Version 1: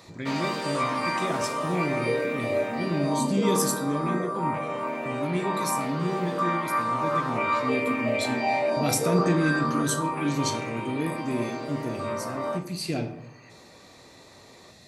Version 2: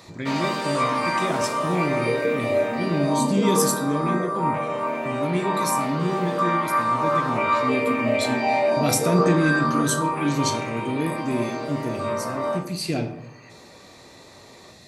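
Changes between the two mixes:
speech +3.5 dB
background: send +8.5 dB

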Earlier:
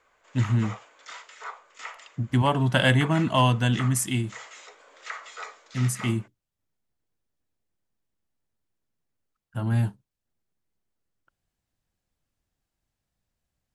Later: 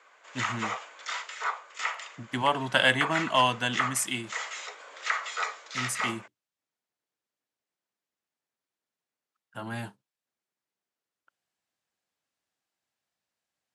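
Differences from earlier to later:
background +7.0 dB
master: add meter weighting curve A

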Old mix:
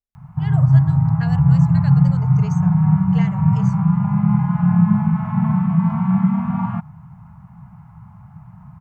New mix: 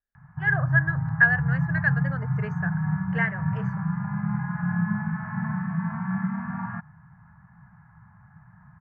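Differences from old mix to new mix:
background −11.5 dB
master: add low-pass with resonance 1,700 Hz, resonance Q 12

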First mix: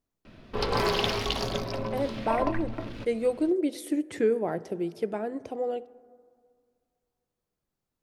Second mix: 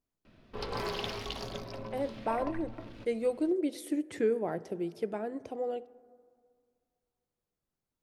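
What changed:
speech −4.0 dB
background −9.5 dB

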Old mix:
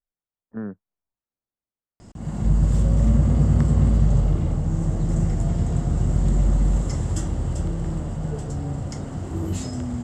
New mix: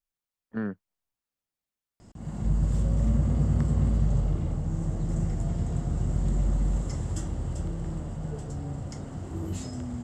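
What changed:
speech: remove low-pass filter 1,200 Hz 12 dB per octave
background −6.5 dB

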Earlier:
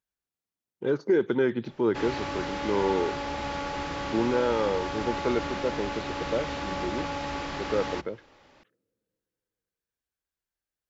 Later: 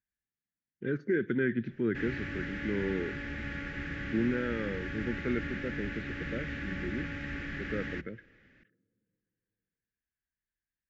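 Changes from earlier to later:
speech: send +7.0 dB
master: add drawn EQ curve 230 Hz 0 dB, 520 Hz −13 dB, 960 Hz −26 dB, 1,700 Hz +4 dB, 4,300 Hz −17 dB

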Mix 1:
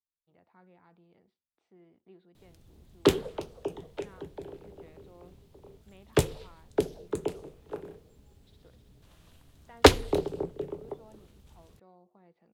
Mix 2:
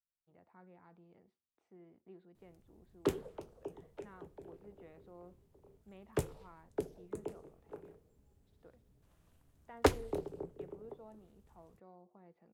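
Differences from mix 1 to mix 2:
background −10.5 dB
master: add parametric band 3,700 Hz −8.5 dB 1.2 octaves

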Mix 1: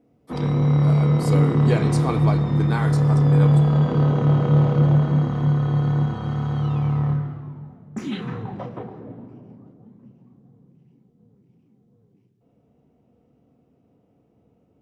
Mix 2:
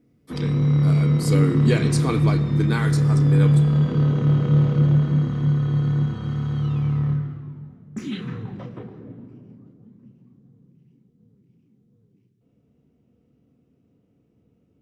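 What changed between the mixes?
speech +5.5 dB
master: add parametric band 770 Hz −11.5 dB 1.2 octaves

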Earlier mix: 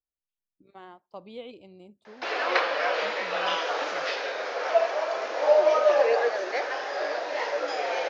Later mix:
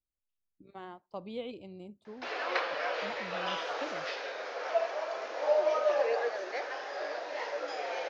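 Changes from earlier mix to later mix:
speech: add low-shelf EQ 210 Hz +7.5 dB
background −7.5 dB

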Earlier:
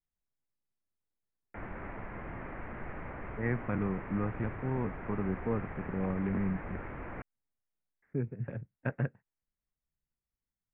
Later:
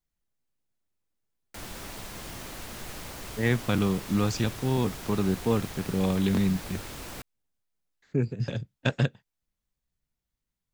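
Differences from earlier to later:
speech +7.5 dB
master: remove Butterworth low-pass 2,200 Hz 48 dB per octave

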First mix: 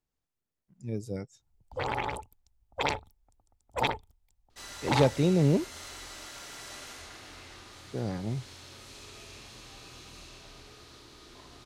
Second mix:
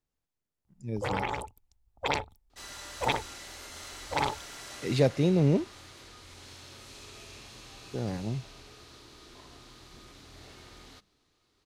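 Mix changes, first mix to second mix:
first sound: entry −0.75 s
second sound: entry −2.00 s

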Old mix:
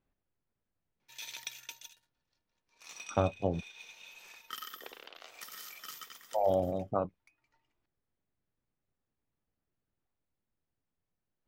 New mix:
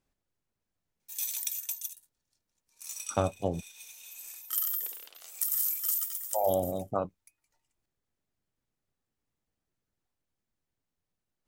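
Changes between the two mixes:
background −8.0 dB
master: remove high-frequency loss of the air 260 metres

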